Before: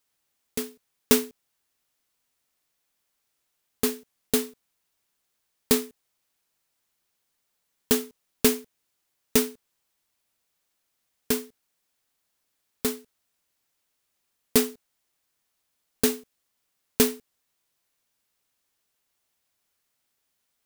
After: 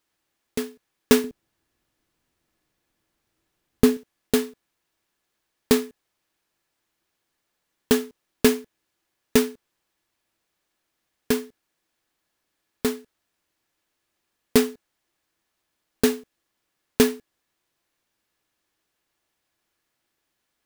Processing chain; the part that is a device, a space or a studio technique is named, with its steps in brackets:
inside a helmet (high-shelf EQ 5,000 Hz −9 dB; hollow resonant body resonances 330/1,700 Hz, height 9 dB, ringing for 95 ms)
0:01.24–0:03.97: low-shelf EQ 350 Hz +11 dB
level +4 dB

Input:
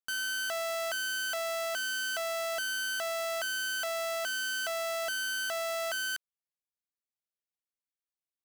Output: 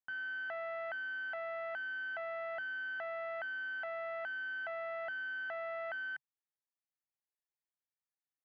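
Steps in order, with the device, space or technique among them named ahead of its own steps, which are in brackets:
low-pass filter 7,700 Hz
bass cabinet (loudspeaker in its box 69–2,200 Hz, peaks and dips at 81 Hz −8 dB, 140 Hz +9 dB, 230 Hz −3 dB, 430 Hz −7 dB, 820 Hz +9 dB, 1,800 Hz +9 dB)
high-shelf EQ 8,800 Hz +11 dB
level −8.5 dB

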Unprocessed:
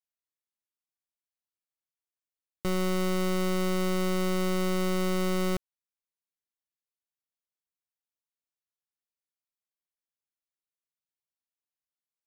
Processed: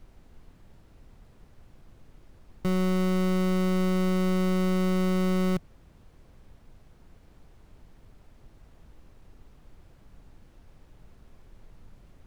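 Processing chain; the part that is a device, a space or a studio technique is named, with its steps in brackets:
car interior (parametric band 160 Hz +8 dB 0.6 octaves; high-shelf EQ 4,000 Hz −6.5 dB; brown noise bed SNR 20 dB)

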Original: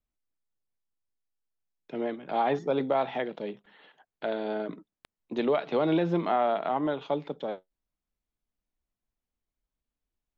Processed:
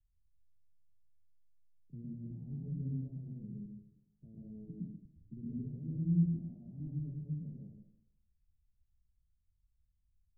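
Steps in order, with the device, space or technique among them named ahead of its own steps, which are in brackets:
club heard from the street (brickwall limiter −23.5 dBFS, peak gain reduction 9 dB; low-pass filter 120 Hz 24 dB per octave; convolution reverb RT60 0.80 s, pre-delay 106 ms, DRR −5 dB)
level +10.5 dB

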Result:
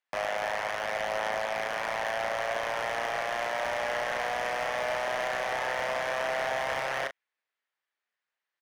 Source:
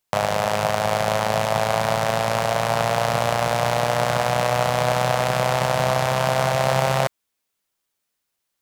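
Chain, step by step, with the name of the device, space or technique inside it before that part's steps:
megaphone (band-pass filter 520–3,100 Hz; parametric band 1,800 Hz +8 dB 0.51 octaves; hard clipping −20.5 dBFS, distortion −6 dB; double-tracking delay 37 ms −9 dB)
dynamic equaliser 2,100 Hz, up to +4 dB, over −46 dBFS, Q 1.9
level −6 dB

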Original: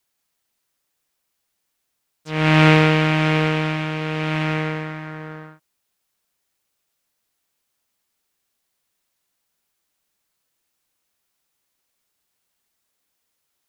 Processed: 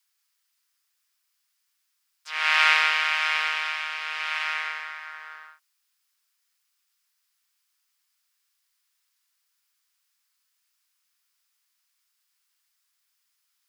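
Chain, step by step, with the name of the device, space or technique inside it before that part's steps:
headphones lying on a table (high-pass filter 1,100 Hz 24 dB per octave; parametric band 5,000 Hz +5 dB 0.23 octaves)

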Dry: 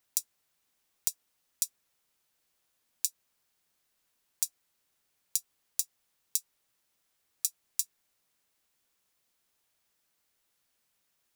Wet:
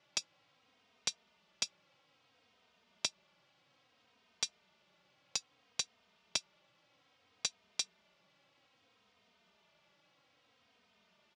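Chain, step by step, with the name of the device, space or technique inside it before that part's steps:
barber-pole flanger into a guitar amplifier (barber-pole flanger 3 ms −0.61 Hz; soft clipping −15 dBFS, distortion −13 dB; loudspeaker in its box 98–4,200 Hz, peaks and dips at 190 Hz +5 dB, 350 Hz −3 dB, 590 Hz +4 dB, 1,700 Hz −5 dB, 4,100 Hz −4 dB)
level +16 dB

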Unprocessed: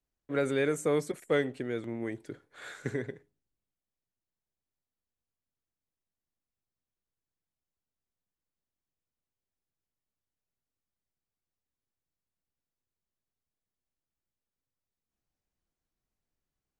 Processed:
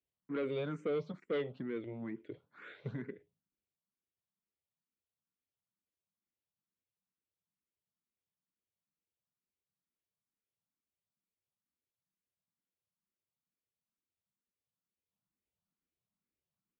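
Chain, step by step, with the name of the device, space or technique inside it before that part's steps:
barber-pole phaser into a guitar amplifier (frequency shifter mixed with the dry sound +2.2 Hz; soft clipping −27 dBFS, distortion −12 dB; loudspeaker in its box 83–3,500 Hz, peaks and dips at 190 Hz +7 dB, 770 Hz −5 dB, 1,700 Hz −6 dB)
level −2 dB

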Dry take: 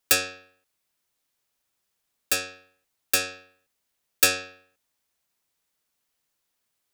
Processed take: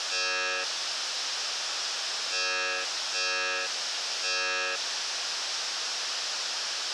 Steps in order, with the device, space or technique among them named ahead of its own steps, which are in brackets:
home computer beeper (sign of each sample alone; loudspeaker in its box 700–5,800 Hz, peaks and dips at 1,000 Hz −4 dB, 2,100 Hz −6 dB, 5,300 Hz +6 dB)
level +6 dB

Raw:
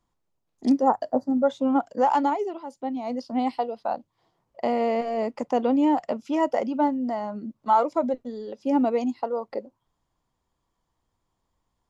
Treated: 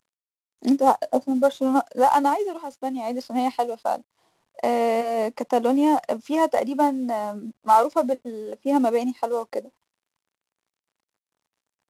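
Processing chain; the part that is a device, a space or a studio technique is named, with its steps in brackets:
0:07.11–0:08.75: low-pass that shuts in the quiet parts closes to 1,700 Hz, open at −15.5 dBFS
early wireless headset (high-pass filter 280 Hz 6 dB per octave; variable-slope delta modulation 64 kbit/s)
level +4 dB

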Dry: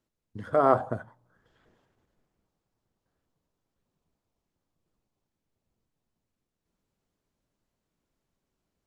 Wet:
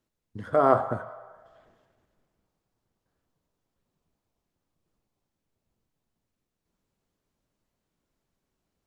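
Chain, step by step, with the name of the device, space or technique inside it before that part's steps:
filtered reverb send (on a send: high-pass filter 570 Hz 24 dB per octave + low-pass filter 3,900 Hz + convolution reverb RT60 1.5 s, pre-delay 9 ms, DRR 10 dB)
on the sum: level +1 dB

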